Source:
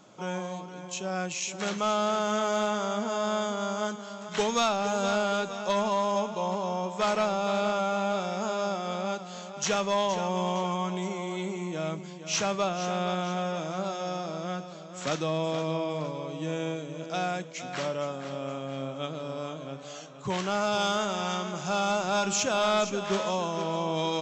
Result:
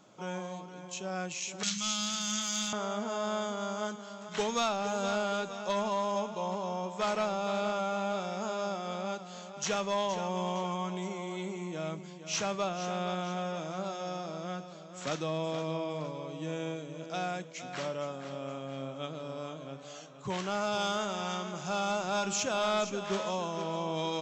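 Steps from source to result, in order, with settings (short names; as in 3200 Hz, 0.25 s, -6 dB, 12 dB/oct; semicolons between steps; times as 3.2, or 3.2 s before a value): 1.63–2.73 EQ curve 210 Hz 0 dB, 320 Hz -28 dB, 4700 Hz +13 dB; gain -4.5 dB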